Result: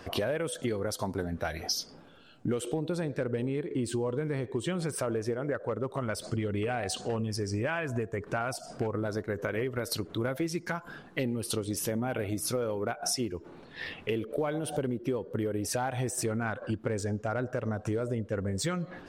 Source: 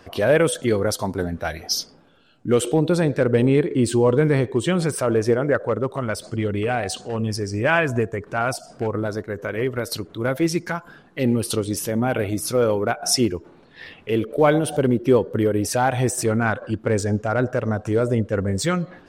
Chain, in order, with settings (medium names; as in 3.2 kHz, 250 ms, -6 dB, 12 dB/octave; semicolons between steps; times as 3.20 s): compression 12:1, threshold -29 dBFS, peak gain reduction 18 dB; trim +1 dB